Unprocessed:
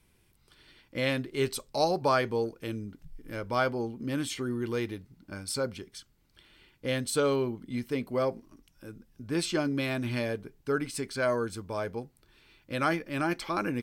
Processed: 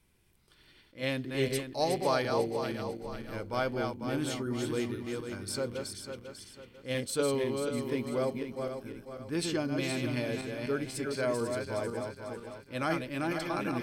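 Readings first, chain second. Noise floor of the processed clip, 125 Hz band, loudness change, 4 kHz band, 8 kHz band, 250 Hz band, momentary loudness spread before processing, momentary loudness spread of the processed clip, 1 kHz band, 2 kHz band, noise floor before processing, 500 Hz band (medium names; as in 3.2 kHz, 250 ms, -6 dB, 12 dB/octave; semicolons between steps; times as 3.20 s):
-62 dBFS, -1.5 dB, -2.0 dB, -1.5 dB, -1.0 dB, -1.0 dB, 17 LU, 11 LU, -3.0 dB, -3.0 dB, -67 dBFS, -1.5 dB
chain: backward echo that repeats 248 ms, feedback 61%, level -4.5 dB; dynamic bell 1.3 kHz, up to -4 dB, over -41 dBFS, Q 1.9; attacks held to a fixed rise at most 280 dB/s; trim -3 dB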